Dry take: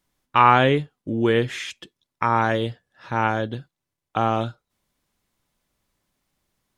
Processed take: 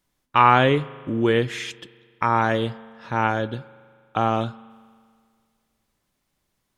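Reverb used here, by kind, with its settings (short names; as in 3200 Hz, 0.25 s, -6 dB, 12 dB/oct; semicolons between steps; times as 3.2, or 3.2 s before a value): spring tank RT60 2 s, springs 40 ms, chirp 75 ms, DRR 18.5 dB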